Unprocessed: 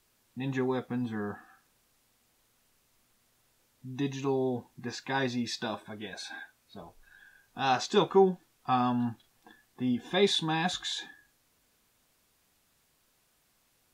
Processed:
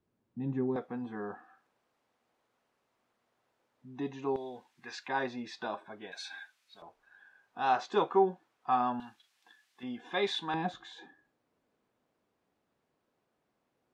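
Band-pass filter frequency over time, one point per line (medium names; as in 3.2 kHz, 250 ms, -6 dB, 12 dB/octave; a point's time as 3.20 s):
band-pass filter, Q 0.71
210 Hz
from 0.76 s 680 Hz
from 4.36 s 2.2 kHz
from 5.08 s 860 Hz
from 6.12 s 2.9 kHz
from 6.82 s 860 Hz
from 9.00 s 3.1 kHz
from 9.83 s 1.2 kHz
from 10.54 s 410 Hz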